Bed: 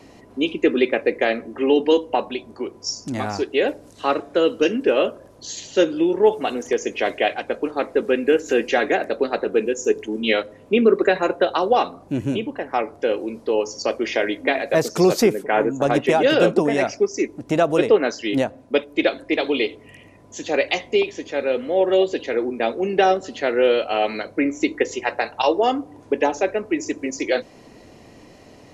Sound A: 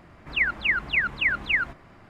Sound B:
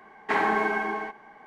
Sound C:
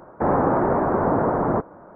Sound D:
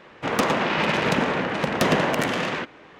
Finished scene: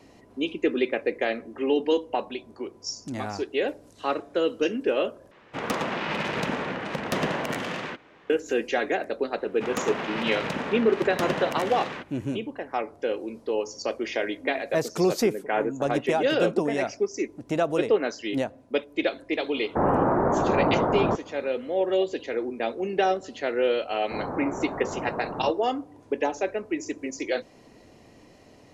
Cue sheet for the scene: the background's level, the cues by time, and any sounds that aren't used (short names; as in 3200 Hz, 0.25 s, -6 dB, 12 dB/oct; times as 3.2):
bed -6.5 dB
5.31 replace with D -6.5 dB
9.38 add D -8.5 dB
19.55 add C -2.5 dB
23.9 add C -13 dB
not used: A, B